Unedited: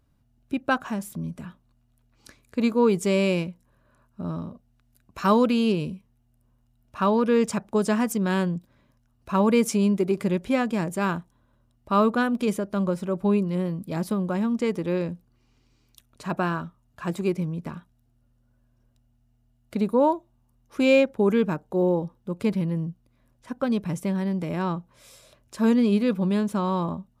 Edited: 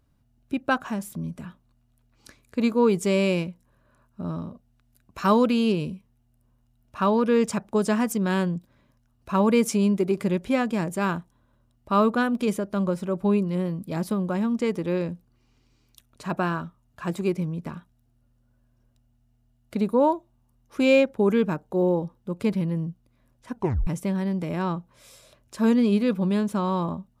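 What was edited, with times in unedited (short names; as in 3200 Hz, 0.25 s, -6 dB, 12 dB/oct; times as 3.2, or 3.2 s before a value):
23.55 tape stop 0.32 s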